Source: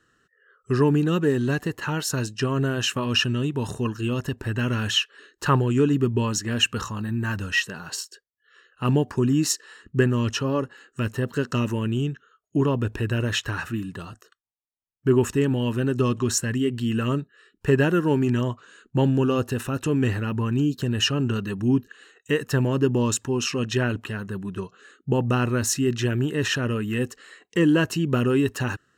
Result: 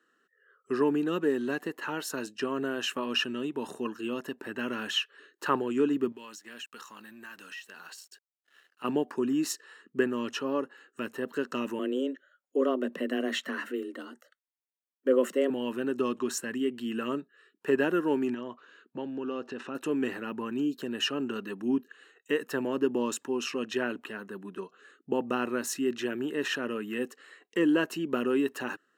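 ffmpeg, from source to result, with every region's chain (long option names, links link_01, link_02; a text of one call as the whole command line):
ffmpeg -i in.wav -filter_complex "[0:a]asettb=1/sr,asplit=3[link_01][link_02][link_03];[link_01]atrim=end=6.124[link_04];[link_02]atrim=start=6.12:end=8.84,asetpts=PTS-STARTPTS,afade=type=in:duration=0.004:curve=qsin,afade=type=out:start_time=2.716:duration=0.004:curve=qsin,tiltshelf=frequency=1200:gain=-7.5,acompressor=threshold=-36dB:ratio=4:attack=3.2:release=140:knee=1:detection=peak,aeval=exprs='sgn(val(0))*max(abs(val(0))-0.00119,0)':channel_layout=same[link_05];[link_03]atrim=start=8.836[link_06];[link_04][link_05]acrossfade=duration=0.004:curve1=hsin:curve2=qsin[link_07];[link_07][link_06]acrossfade=duration=0.004:curve1=qsin:curve2=hsin,asettb=1/sr,asplit=3[link_08][link_09][link_10];[link_08]atrim=end=11.794[link_11];[link_09]atrim=start=11.79:end=15.5,asetpts=PTS-STARTPTS,afade=type=in:duration=0.004:curve=qsin,afade=type=out:start_time=3.706:duration=0.004:curve=qsin,bandreject=frequency=670:width=5.6,afreqshift=130[link_12];[link_10]atrim=start=15.496[link_13];[link_11][link_12]acrossfade=duration=0.004:curve1=hsin:curve2=qsin[link_14];[link_14][link_13]acrossfade=duration=0.004:curve1=qsin:curve2=hsin,asettb=1/sr,asplit=3[link_15][link_16][link_17];[link_15]atrim=end=18.344[link_18];[link_16]atrim=start=18.34:end=19.75,asetpts=PTS-STARTPTS,afade=type=in:duration=0.004:curve=qsin,afade=type=out:start_time=1.406:duration=0.004:curve=qsin,lowpass=frequency=5800:width=0.5412,lowpass=frequency=5800:width=1.3066,acompressor=threshold=-24dB:ratio=6:attack=3.2:release=140:knee=1:detection=peak[link_19];[link_17]atrim=start=19.746[link_20];[link_18][link_19]acrossfade=duration=0.004:curve1=hsin:curve2=qsin[link_21];[link_21][link_20]acrossfade=duration=0.004:curve1=qsin:curve2=hsin,highpass=frequency=240:width=0.5412,highpass=frequency=240:width=1.3066,equalizer=frequency=6200:width=0.82:gain=-6.5,volume=-4.5dB" out.wav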